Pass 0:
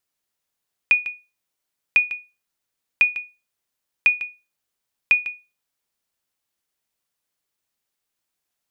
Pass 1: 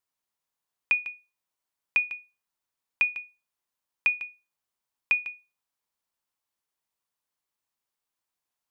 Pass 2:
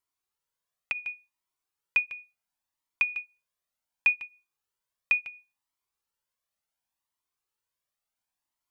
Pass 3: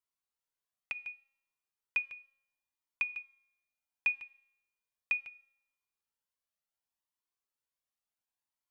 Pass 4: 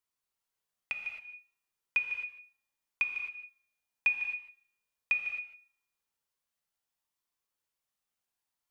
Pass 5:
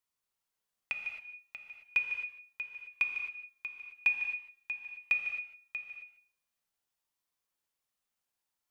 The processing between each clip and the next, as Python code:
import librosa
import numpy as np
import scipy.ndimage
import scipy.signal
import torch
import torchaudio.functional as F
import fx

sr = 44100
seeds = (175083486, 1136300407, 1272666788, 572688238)

y1 = fx.peak_eq(x, sr, hz=990.0, db=7.0, octaves=0.66)
y1 = F.gain(torch.from_numpy(y1), -7.0).numpy()
y2 = fx.comb_cascade(y1, sr, direction='rising', hz=0.7)
y2 = F.gain(torch.from_numpy(y2), 3.0).numpy()
y3 = fx.comb_fb(y2, sr, f0_hz=270.0, decay_s=0.96, harmonics='all', damping=0.0, mix_pct=50)
y3 = F.gain(torch.from_numpy(y3), -1.5).numpy()
y4 = fx.rev_gated(y3, sr, seeds[0], gate_ms=290, shape='flat', drr_db=3.5)
y4 = F.gain(torch.from_numpy(y4), 2.5).numpy()
y5 = y4 + 10.0 ** (-10.5 / 20.0) * np.pad(y4, (int(637 * sr / 1000.0), 0))[:len(y4)]